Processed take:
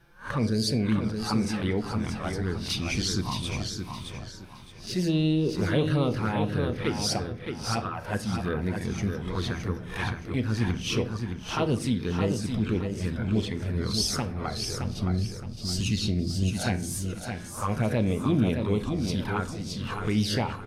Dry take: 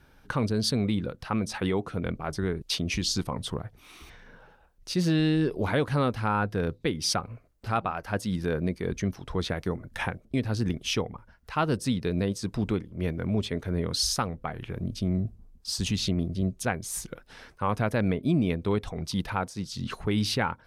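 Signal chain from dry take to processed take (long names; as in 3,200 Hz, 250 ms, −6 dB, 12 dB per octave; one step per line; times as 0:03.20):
peak hold with a rise ahead of every peak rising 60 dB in 0.31 s
flanger swept by the level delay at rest 6.2 ms, full sweep at −20.5 dBFS
repeating echo 618 ms, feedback 30%, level −6 dB
on a send at −8.5 dB: convolution reverb RT60 0.65 s, pre-delay 8 ms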